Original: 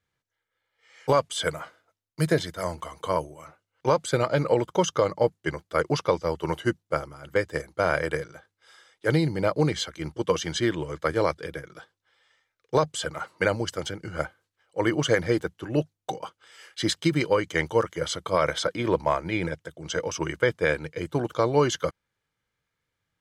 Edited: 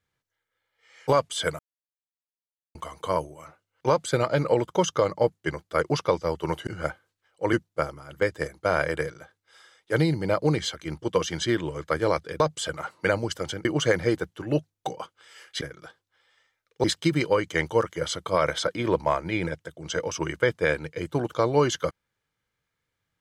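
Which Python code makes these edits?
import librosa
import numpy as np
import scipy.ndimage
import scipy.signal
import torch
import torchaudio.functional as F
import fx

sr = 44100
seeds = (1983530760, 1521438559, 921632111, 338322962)

y = fx.edit(x, sr, fx.silence(start_s=1.59, length_s=1.16),
    fx.move(start_s=11.54, length_s=1.23, to_s=16.84),
    fx.move(start_s=14.02, length_s=0.86, to_s=6.67), tone=tone)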